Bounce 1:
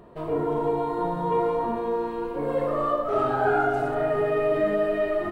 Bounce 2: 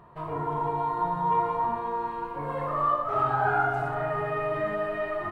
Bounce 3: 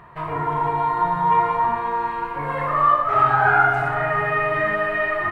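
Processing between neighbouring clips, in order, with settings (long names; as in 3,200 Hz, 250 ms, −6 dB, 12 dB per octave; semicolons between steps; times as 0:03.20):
octave-band graphic EQ 125/250/500/1,000/2,000 Hz +10/−5/−5/+11/+4 dB; level −6.5 dB
octave-band graphic EQ 250/500/2,000 Hz −3/−3/+9 dB; level +6.5 dB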